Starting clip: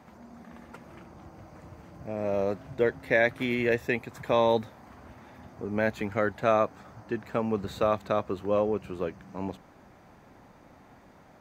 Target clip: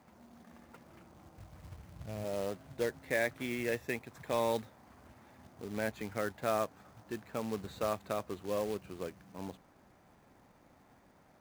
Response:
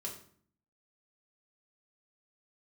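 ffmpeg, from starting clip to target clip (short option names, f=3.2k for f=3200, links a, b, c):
-filter_complex "[0:a]asplit=3[a][b][c];[a]afade=t=out:st=1.37:d=0.02[d];[b]asubboost=boost=7.5:cutoff=130,afade=t=in:st=1.37:d=0.02,afade=t=out:st=2.23:d=0.02[e];[c]afade=t=in:st=2.23:d=0.02[f];[d][e][f]amix=inputs=3:normalize=0,acrusher=bits=3:mode=log:mix=0:aa=0.000001,volume=-9dB"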